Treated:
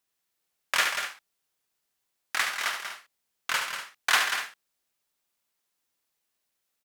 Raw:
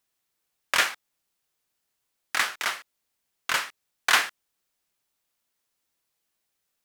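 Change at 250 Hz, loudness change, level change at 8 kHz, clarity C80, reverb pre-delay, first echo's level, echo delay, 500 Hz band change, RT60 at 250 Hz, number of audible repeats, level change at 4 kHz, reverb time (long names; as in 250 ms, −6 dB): −5.0 dB, −2.0 dB, −1.0 dB, no reverb audible, no reverb audible, −7.0 dB, 72 ms, −2.5 dB, no reverb audible, 3, −1.0 dB, no reverb audible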